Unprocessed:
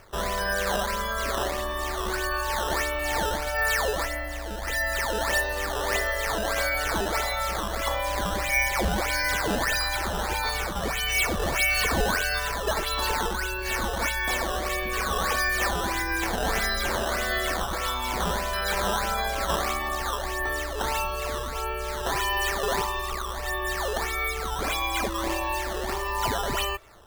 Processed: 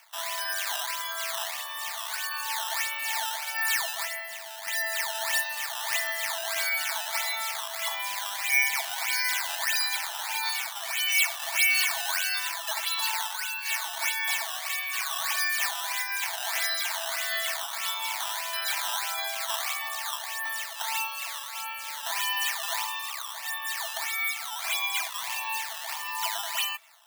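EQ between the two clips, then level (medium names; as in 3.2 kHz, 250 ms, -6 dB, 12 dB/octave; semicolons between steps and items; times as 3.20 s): rippled Chebyshev high-pass 640 Hz, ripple 6 dB; tilt EQ +3.5 dB/octave; -3.0 dB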